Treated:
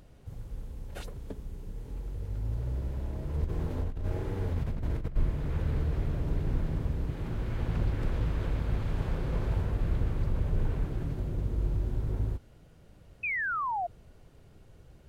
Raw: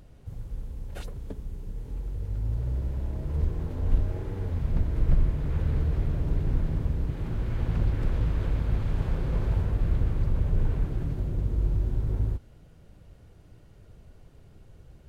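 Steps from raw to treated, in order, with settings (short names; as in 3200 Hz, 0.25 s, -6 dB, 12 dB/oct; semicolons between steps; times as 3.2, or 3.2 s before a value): low shelf 190 Hz -4.5 dB; 3.44–5.16 negative-ratio compressor -31 dBFS, ratio -1; 13.23–13.87 painted sound fall 670–2600 Hz -31 dBFS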